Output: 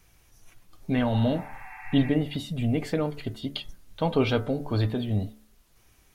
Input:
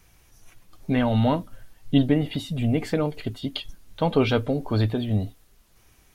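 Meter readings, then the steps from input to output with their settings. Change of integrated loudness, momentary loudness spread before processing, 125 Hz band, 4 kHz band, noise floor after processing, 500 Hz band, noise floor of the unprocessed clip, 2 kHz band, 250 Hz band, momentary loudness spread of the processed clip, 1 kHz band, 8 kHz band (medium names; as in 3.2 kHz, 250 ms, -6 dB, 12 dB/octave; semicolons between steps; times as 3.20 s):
-3.0 dB, 11 LU, -2.5 dB, -2.5 dB, -61 dBFS, -3.0 dB, -58 dBFS, -2.0 dB, -3.0 dB, 14 LU, -4.0 dB, -2.5 dB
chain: de-hum 72.5 Hz, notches 29; spectral replace 1.14–2.07 s, 750–2700 Hz both; trim -2.5 dB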